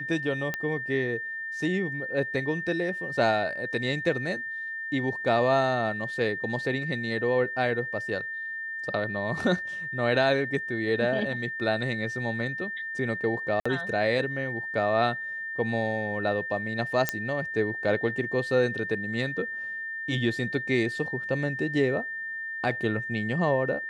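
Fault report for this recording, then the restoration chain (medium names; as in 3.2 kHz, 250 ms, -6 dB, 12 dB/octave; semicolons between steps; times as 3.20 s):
whine 1.8 kHz -32 dBFS
0.54 s: pop -15 dBFS
13.60–13.65 s: dropout 55 ms
17.09 s: pop -8 dBFS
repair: de-click; band-stop 1.8 kHz, Q 30; interpolate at 13.60 s, 55 ms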